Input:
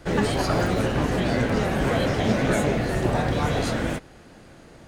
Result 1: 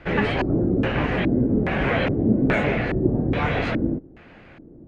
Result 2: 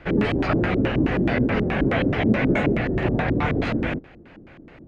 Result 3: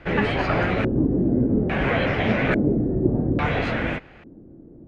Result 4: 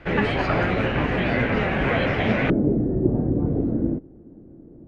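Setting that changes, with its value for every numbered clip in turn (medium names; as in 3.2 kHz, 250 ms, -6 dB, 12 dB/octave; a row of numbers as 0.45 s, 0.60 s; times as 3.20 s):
LFO low-pass, rate: 1.2 Hz, 4.7 Hz, 0.59 Hz, 0.2 Hz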